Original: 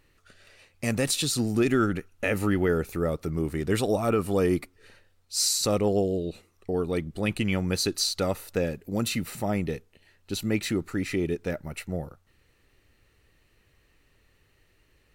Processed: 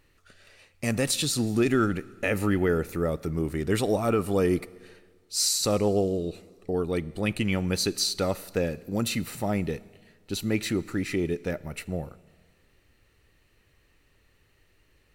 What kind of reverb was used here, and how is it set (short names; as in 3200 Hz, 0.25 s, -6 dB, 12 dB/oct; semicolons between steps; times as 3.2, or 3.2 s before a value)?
Schroeder reverb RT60 1.7 s, combs from 27 ms, DRR 19.5 dB